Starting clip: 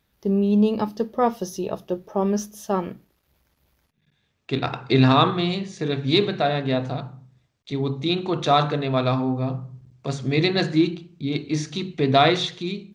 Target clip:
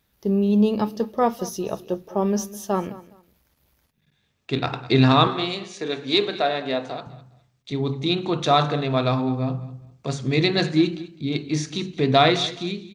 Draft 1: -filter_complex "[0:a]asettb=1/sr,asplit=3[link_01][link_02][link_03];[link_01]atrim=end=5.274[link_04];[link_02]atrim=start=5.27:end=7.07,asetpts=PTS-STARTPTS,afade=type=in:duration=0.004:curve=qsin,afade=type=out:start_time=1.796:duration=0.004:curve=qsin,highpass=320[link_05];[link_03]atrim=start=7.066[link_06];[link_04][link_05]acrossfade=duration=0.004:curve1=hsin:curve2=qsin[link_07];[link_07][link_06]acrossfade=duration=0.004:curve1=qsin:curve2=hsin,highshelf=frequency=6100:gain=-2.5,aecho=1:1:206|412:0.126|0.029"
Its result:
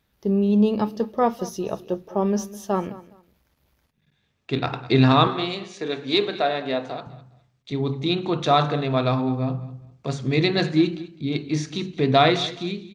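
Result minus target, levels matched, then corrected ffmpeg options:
8,000 Hz band −3.5 dB
-filter_complex "[0:a]asettb=1/sr,asplit=3[link_01][link_02][link_03];[link_01]atrim=end=5.274[link_04];[link_02]atrim=start=5.27:end=7.07,asetpts=PTS-STARTPTS,afade=type=in:duration=0.004:curve=qsin,afade=type=out:start_time=1.796:duration=0.004:curve=qsin,highpass=320[link_05];[link_03]atrim=start=7.066[link_06];[link_04][link_05]acrossfade=duration=0.004:curve1=hsin:curve2=qsin[link_07];[link_07][link_06]acrossfade=duration=0.004:curve1=qsin:curve2=hsin,highshelf=frequency=6100:gain=5,aecho=1:1:206|412:0.126|0.029"

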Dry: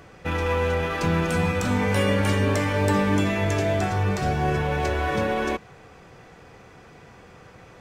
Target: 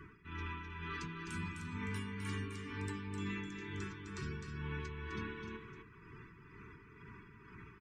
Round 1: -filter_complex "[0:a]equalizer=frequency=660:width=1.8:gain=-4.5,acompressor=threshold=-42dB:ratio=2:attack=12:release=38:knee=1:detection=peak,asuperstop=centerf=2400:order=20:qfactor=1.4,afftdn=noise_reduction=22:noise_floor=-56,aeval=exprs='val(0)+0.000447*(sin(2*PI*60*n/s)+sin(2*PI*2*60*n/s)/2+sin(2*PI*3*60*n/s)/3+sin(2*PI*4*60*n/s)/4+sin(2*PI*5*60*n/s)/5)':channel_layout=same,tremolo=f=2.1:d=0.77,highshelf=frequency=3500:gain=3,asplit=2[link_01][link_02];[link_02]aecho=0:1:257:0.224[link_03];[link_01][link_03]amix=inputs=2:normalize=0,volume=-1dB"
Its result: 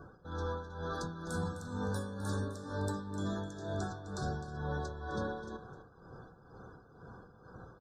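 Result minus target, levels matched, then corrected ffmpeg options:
500 Hz band +5.5 dB; downward compressor: peak gain reduction −4.5 dB; echo-to-direct −7 dB
-filter_complex "[0:a]equalizer=frequency=660:width=1.8:gain=-4.5,acompressor=threshold=-51.5dB:ratio=2:attack=12:release=38:knee=1:detection=peak,asuperstop=centerf=630:order=20:qfactor=1.4,afftdn=noise_reduction=22:noise_floor=-56,aeval=exprs='val(0)+0.000447*(sin(2*PI*60*n/s)+sin(2*PI*2*60*n/s)/2+sin(2*PI*3*60*n/s)/3+sin(2*PI*4*60*n/s)/4+sin(2*PI*5*60*n/s)/5)':channel_layout=same,tremolo=f=2.1:d=0.77,highshelf=frequency=3500:gain=3,asplit=2[link_01][link_02];[link_02]aecho=0:1:257:0.501[link_03];[link_01][link_03]amix=inputs=2:normalize=0,volume=-1dB"

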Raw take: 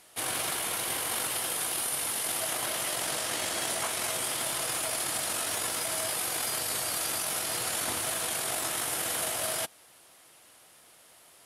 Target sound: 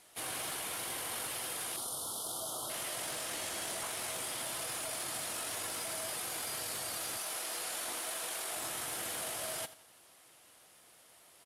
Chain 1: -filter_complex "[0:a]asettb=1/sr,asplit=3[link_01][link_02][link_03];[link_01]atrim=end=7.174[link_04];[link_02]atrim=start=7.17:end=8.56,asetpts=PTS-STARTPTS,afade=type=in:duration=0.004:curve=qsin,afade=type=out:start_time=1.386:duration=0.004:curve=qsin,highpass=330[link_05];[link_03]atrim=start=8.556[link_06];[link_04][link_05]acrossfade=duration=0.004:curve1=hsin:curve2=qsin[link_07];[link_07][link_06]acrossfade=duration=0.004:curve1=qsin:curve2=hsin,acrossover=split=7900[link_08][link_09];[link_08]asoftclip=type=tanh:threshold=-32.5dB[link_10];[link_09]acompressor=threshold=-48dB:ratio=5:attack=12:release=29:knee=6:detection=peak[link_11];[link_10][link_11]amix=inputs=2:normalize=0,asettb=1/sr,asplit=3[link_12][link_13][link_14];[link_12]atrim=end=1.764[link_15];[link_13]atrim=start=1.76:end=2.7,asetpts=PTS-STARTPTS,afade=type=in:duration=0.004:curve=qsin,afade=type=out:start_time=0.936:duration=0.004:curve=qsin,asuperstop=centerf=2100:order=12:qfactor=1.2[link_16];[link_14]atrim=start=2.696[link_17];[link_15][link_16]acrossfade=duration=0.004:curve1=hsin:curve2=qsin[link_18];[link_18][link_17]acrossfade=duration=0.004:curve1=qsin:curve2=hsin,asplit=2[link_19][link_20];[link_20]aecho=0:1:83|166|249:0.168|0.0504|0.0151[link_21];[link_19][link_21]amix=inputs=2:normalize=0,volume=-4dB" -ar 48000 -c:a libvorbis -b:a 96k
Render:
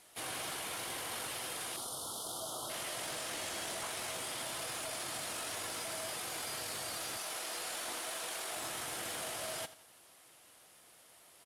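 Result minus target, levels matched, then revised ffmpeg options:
downward compressor: peak gain reduction +6 dB
-filter_complex "[0:a]asettb=1/sr,asplit=3[link_01][link_02][link_03];[link_01]atrim=end=7.174[link_04];[link_02]atrim=start=7.17:end=8.56,asetpts=PTS-STARTPTS,afade=type=in:duration=0.004:curve=qsin,afade=type=out:start_time=1.386:duration=0.004:curve=qsin,highpass=330[link_05];[link_03]atrim=start=8.556[link_06];[link_04][link_05]acrossfade=duration=0.004:curve1=hsin:curve2=qsin[link_07];[link_07][link_06]acrossfade=duration=0.004:curve1=qsin:curve2=hsin,acrossover=split=7900[link_08][link_09];[link_08]asoftclip=type=tanh:threshold=-32.5dB[link_10];[link_09]acompressor=threshold=-40.5dB:ratio=5:attack=12:release=29:knee=6:detection=peak[link_11];[link_10][link_11]amix=inputs=2:normalize=0,asettb=1/sr,asplit=3[link_12][link_13][link_14];[link_12]atrim=end=1.764[link_15];[link_13]atrim=start=1.76:end=2.7,asetpts=PTS-STARTPTS,afade=type=in:duration=0.004:curve=qsin,afade=type=out:start_time=0.936:duration=0.004:curve=qsin,asuperstop=centerf=2100:order=12:qfactor=1.2[link_16];[link_14]atrim=start=2.696[link_17];[link_15][link_16]acrossfade=duration=0.004:curve1=hsin:curve2=qsin[link_18];[link_18][link_17]acrossfade=duration=0.004:curve1=qsin:curve2=hsin,asplit=2[link_19][link_20];[link_20]aecho=0:1:83|166|249:0.168|0.0504|0.0151[link_21];[link_19][link_21]amix=inputs=2:normalize=0,volume=-4dB" -ar 48000 -c:a libvorbis -b:a 96k

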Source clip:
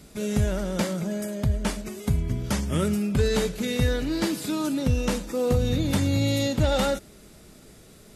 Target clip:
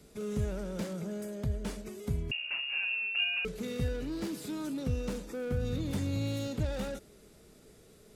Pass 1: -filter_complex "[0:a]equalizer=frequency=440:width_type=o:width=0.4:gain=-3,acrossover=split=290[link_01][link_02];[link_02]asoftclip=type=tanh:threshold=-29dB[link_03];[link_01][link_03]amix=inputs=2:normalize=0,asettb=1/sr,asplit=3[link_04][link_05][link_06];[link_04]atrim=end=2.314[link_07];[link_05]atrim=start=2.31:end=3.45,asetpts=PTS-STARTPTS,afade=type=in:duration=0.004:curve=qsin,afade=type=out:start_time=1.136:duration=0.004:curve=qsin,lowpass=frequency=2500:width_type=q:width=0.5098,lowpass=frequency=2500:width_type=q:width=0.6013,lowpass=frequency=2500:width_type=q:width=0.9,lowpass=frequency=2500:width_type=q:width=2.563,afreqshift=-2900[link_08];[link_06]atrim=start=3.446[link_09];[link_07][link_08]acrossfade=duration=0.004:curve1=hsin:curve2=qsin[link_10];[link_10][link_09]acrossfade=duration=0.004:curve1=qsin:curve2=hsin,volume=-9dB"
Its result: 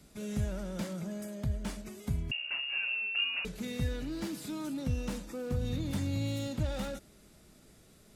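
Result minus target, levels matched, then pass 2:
500 Hz band −3.0 dB
-filter_complex "[0:a]equalizer=frequency=440:width_type=o:width=0.4:gain=7.5,acrossover=split=290[link_01][link_02];[link_02]asoftclip=type=tanh:threshold=-29dB[link_03];[link_01][link_03]amix=inputs=2:normalize=0,asettb=1/sr,asplit=3[link_04][link_05][link_06];[link_04]atrim=end=2.314[link_07];[link_05]atrim=start=2.31:end=3.45,asetpts=PTS-STARTPTS,afade=type=in:duration=0.004:curve=qsin,afade=type=out:start_time=1.136:duration=0.004:curve=qsin,lowpass=frequency=2500:width_type=q:width=0.5098,lowpass=frequency=2500:width_type=q:width=0.6013,lowpass=frequency=2500:width_type=q:width=0.9,lowpass=frequency=2500:width_type=q:width=2.563,afreqshift=-2900[link_08];[link_06]atrim=start=3.446[link_09];[link_07][link_08]acrossfade=duration=0.004:curve1=hsin:curve2=qsin[link_10];[link_10][link_09]acrossfade=duration=0.004:curve1=qsin:curve2=hsin,volume=-9dB"

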